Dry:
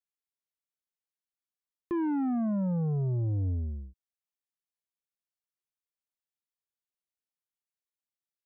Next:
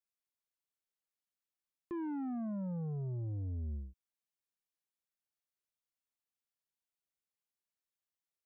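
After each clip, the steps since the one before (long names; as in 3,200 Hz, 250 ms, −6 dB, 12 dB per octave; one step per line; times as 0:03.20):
brickwall limiter −34 dBFS, peak gain reduction 7 dB
level −2.5 dB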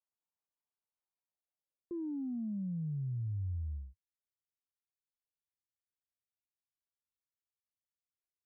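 low-pass filter sweep 950 Hz → 100 Hz, 0:01.21–0:03.47
level −5.5 dB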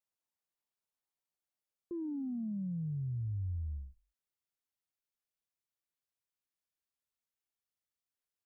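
echo with shifted repeats 96 ms, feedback 31%, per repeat −57 Hz, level −23 dB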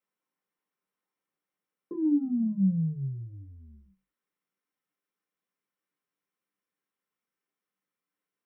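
convolution reverb RT60 0.15 s, pre-delay 3 ms, DRR 1.5 dB
level −3 dB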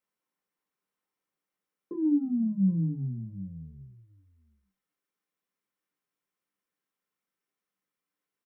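single-tap delay 772 ms −15.5 dB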